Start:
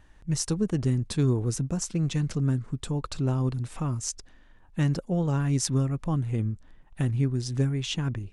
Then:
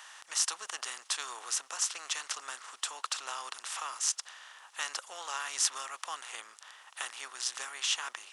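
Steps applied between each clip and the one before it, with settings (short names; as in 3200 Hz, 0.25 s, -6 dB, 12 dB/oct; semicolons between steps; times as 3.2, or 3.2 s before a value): per-bin compression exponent 0.6; HPF 940 Hz 24 dB/oct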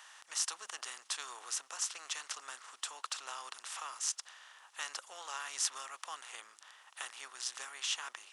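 de-hum 111.4 Hz, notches 3; gain -5 dB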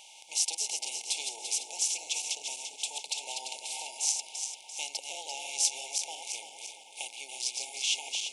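regenerating reverse delay 0.171 s, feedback 69%, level -5 dB; FFT band-reject 930–2100 Hz; notches 60/120 Hz; gain +6 dB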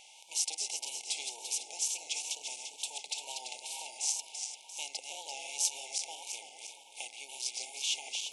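wow and flutter 61 cents; gain -3.5 dB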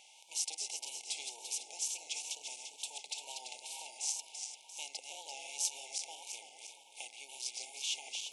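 HPF 100 Hz; gain -4 dB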